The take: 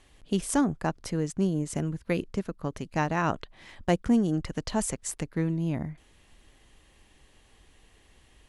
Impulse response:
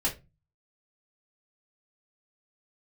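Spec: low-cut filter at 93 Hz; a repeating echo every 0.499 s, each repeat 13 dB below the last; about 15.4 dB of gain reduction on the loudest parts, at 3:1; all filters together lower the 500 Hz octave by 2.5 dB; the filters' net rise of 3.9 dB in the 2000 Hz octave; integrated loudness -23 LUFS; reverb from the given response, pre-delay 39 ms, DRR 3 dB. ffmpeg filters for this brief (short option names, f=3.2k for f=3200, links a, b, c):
-filter_complex "[0:a]highpass=93,equalizer=f=500:t=o:g=-3.5,equalizer=f=2k:t=o:g=5,acompressor=threshold=-41dB:ratio=3,aecho=1:1:499|998|1497:0.224|0.0493|0.0108,asplit=2[a][b];[1:a]atrim=start_sample=2205,adelay=39[c];[b][c]afir=irnorm=-1:irlink=0,volume=-10.5dB[d];[a][d]amix=inputs=2:normalize=0,volume=16.5dB"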